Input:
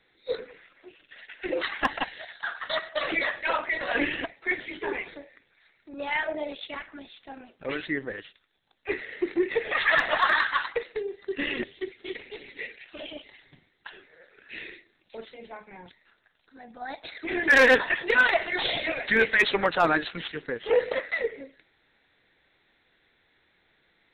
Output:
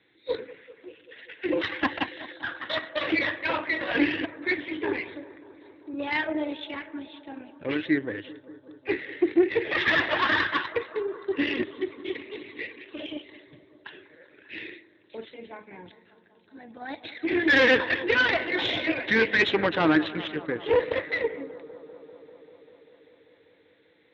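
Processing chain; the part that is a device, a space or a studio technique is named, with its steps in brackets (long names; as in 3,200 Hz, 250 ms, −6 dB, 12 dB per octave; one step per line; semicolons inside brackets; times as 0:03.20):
analogue delay pedal into a guitar amplifier (bucket-brigade delay 196 ms, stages 2,048, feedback 80%, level −18 dB; tube saturation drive 18 dB, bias 0.6; loudspeaker in its box 90–4,500 Hz, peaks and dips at 100 Hz +8 dB, 310 Hz +9 dB, 720 Hz −5 dB, 1,300 Hz −5 dB)
level +4 dB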